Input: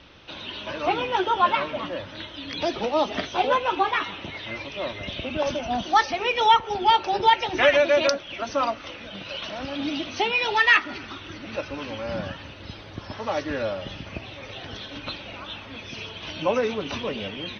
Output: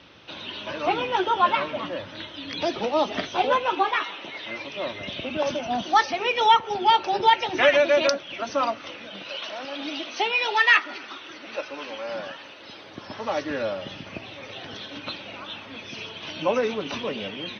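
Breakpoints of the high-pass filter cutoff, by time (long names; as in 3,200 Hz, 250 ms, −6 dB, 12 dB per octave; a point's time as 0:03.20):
0:03.57 100 Hz
0:04.08 430 Hz
0:04.85 130 Hz
0:08.84 130 Hz
0:09.50 390 Hz
0:12.62 390 Hz
0:13.21 140 Hz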